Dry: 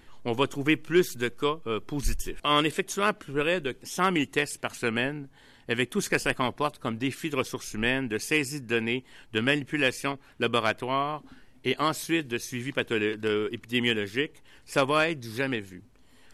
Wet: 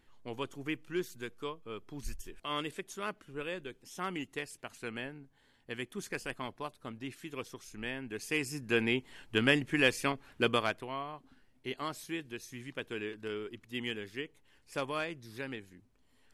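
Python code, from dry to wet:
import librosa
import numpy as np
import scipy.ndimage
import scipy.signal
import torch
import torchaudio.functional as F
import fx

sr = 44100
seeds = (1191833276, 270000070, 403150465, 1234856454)

y = fx.gain(x, sr, db=fx.line((7.96, -13.0), (8.8, -2.0), (10.44, -2.0), (10.94, -12.0)))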